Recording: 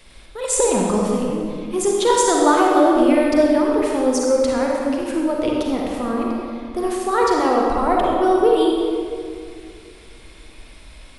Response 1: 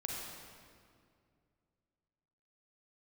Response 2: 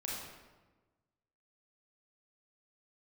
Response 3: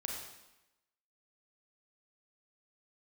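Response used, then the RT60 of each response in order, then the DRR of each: 1; 2.3, 1.3, 0.95 seconds; −2.0, −5.0, −1.0 decibels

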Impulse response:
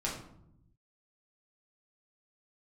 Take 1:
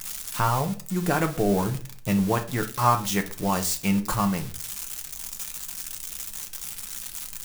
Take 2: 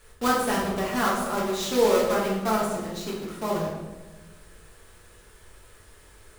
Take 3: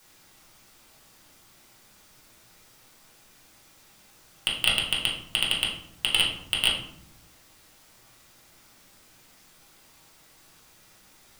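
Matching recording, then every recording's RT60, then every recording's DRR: 3; 0.45, 1.3, 0.75 seconds; 4.5, −5.5, −5.0 decibels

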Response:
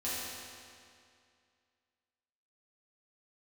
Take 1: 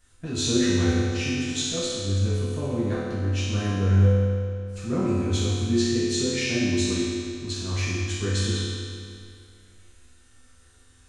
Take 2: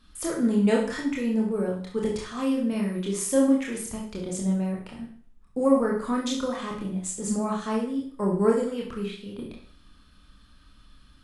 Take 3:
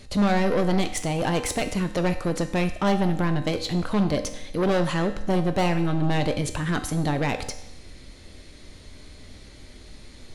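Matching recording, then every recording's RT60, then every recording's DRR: 1; 2.3, 0.50, 0.85 seconds; −11.0, −2.5, 7.0 decibels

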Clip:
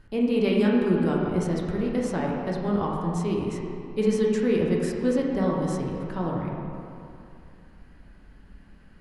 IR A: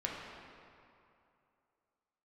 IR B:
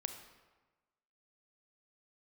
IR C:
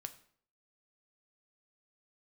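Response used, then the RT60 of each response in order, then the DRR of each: A; 2.7, 1.2, 0.60 seconds; −3.0, 6.5, 8.5 decibels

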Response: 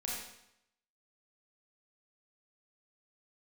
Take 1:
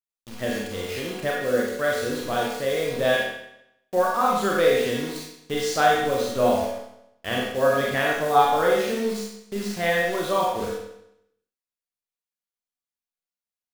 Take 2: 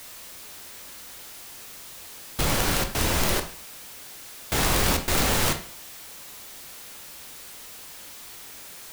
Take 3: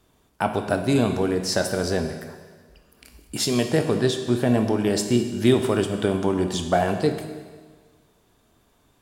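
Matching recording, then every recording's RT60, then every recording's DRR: 1; 0.80, 0.45, 1.5 seconds; −4.5, 6.0, 6.5 decibels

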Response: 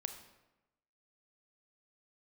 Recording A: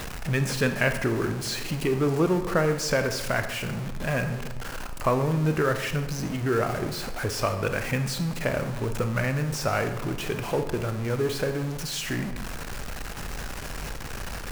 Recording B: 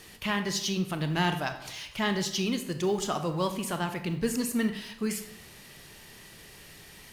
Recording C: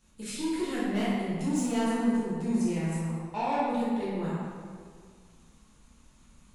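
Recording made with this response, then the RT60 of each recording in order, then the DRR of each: A; 1.0, 0.75, 2.0 seconds; 7.0, 7.5, −10.0 decibels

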